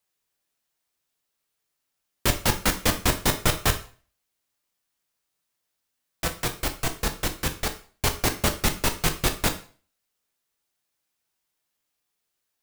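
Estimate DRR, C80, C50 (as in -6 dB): 6.0 dB, 17.0 dB, 13.0 dB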